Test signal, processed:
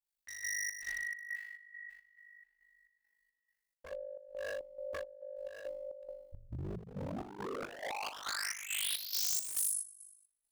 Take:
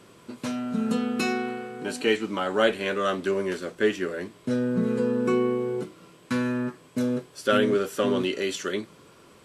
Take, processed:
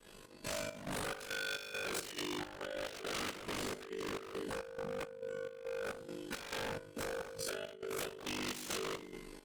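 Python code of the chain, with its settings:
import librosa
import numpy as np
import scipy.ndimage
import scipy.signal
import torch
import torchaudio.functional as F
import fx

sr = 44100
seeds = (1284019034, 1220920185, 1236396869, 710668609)

y = fx.resonator_bank(x, sr, root=49, chord='minor', decay_s=0.81)
y = fx.echo_feedback(y, sr, ms=174, feedback_pct=41, wet_db=-24)
y = fx.room_shoebox(y, sr, seeds[0], volume_m3=46.0, walls='mixed', distance_m=2.5)
y = y * np.sin(2.0 * np.pi * 25.0 * np.arange(len(y)) / sr)
y = fx.over_compress(y, sr, threshold_db=-40.0, ratio=-1.0)
y = 10.0 ** (-37.5 / 20.0) * (np.abs((y / 10.0 ** (-37.5 / 20.0) + 3.0) % 4.0 - 2.0) - 1.0)
y = fx.chopper(y, sr, hz=2.3, depth_pct=65, duty_pct=60)
y = fx.high_shelf(y, sr, hz=4500.0, db=9.0)
y = y * librosa.db_to_amplitude(3.0)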